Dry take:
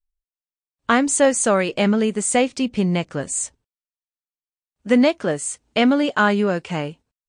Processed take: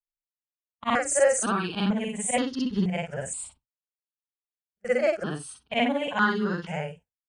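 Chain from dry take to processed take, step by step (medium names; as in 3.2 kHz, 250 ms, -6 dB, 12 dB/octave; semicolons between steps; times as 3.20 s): short-time spectra conjugated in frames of 133 ms; gate with hold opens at -30 dBFS; stepped phaser 2.1 Hz 850–2400 Hz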